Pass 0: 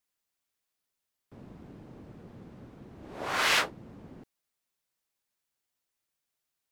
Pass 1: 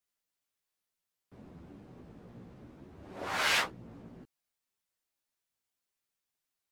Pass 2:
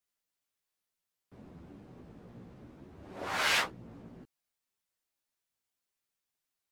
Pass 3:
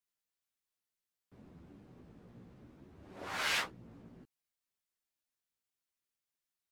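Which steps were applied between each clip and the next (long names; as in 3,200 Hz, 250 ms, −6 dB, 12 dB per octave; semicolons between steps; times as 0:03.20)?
multi-voice chorus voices 2, 0.63 Hz, delay 14 ms, depth 3.7 ms
no processing that can be heard
parametric band 690 Hz −2.5 dB 1.5 octaves; level −4.5 dB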